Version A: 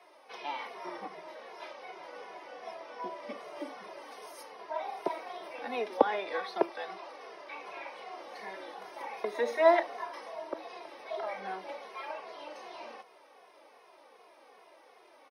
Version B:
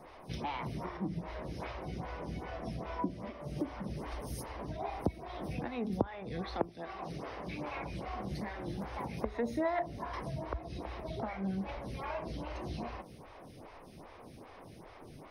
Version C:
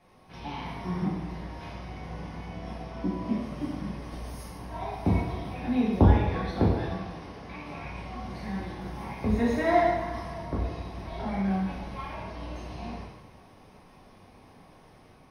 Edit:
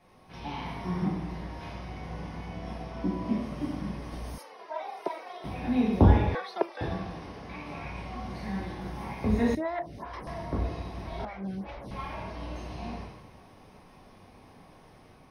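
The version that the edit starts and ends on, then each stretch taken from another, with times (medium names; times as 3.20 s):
C
4.38–5.44 s: from A
6.35–6.81 s: from A
9.55–10.27 s: from B
11.25–11.91 s: from B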